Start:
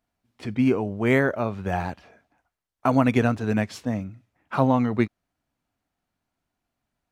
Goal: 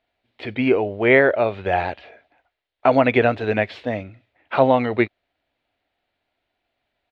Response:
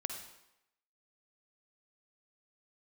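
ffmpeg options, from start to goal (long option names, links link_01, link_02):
-filter_complex "[0:a]acrossover=split=2800[link_01][link_02];[link_02]acompressor=threshold=-46dB:ratio=4:attack=1:release=60[link_03];[link_01][link_03]amix=inputs=2:normalize=0,firequalizer=gain_entry='entry(100,0);entry(170,-6);entry(360,7);entry(600,11);entry(1100,2);entry(2000,12);entry(3800,12);entry(5800,-7);entry(10000,-15)':delay=0.05:min_phase=1,volume=-1dB"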